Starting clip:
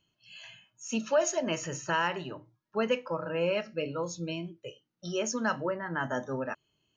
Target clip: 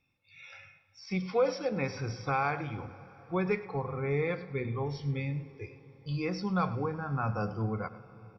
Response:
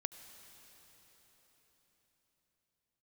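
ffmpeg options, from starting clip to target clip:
-filter_complex "[0:a]acrossover=split=4800[link_01][link_02];[link_02]acompressor=threshold=-47dB:ratio=4:attack=1:release=60[link_03];[link_01][link_03]amix=inputs=2:normalize=0,asubboost=boost=5.5:cutoff=150,asetrate=36603,aresample=44100,aecho=1:1:103:0.141,asplit=2[link_04][link_05];[1:a]atrim=start_sample=2205,highshelf=frequency=3700:gain=-10.5[link_06];[link_05][link_06]afir=irnorm=-1:irlink=0,volume=0dB[link_07];[link_04][link_07]amix=inputs=2:normalize=0,volume=-5.5dB"

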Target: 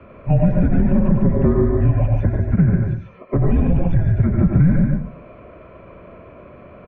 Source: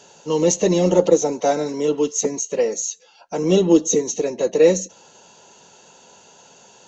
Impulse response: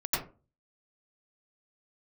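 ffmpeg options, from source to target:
-filter_complex "[0:a]aecho=1:1:143:0.501,asplit=2[link_01][link_02];[1:a]atrim=start_sample=2205[link_03];[link_02][link_03]afir=irnorm=-1:irlink=0,volume=-9.5dB[link_04];[link_01][link_04]amix=inputs=2:normalize=0,alimiter=limit=-6dB:level=0:latency=1:release=14,highpass=frequency=230:width_type=q:width=0.5412,highpass=frequency=230:width_type=q:width=1.307,lowpass=frequency=2300:width_type=q:width=0.5176,lowpass=frequency=2300:width_type=q:width=0.7071,lowpass=frequency=2300:width_type=q:width=1.932,afreqshift=-330,acrossover=split=150|1200[link_05][link_06][link_07];[link_05]acompressor=threshold=-22dB:ratio=4[link_08];[link_06]acompressor=threshold=-23dB:ratio=4[link_09];[link_07]acompressor=threshold=-52dB:ratio=4[link_10];[link_08][link_09][link_10]amix=inputs=3:normalize=0,volume=6.5dB"

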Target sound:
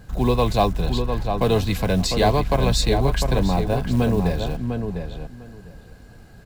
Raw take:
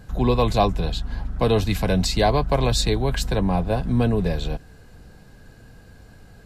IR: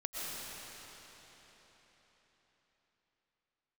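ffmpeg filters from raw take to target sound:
-filter_complex "[0:a]acrusher=bits=7:mode=log:mix=0:aa=0.000001,asplit=2[link_01][link_02];[link_02]adelay=702,lowpass=frequency=2400:poles=1,volume=-6dB,asplit=2[link_03][link_04];[link_04]adelay=702,lowpass=frequency=2400:poles=1,volume=0.17,asplit=2[link_05][link_06];[link_06]adelay=702,lowpass=frequency=2400:poles=1,volume=0.17[link_07];[link_01][link_03][link_05][link_07]amix=inputs=4:normalize=0"

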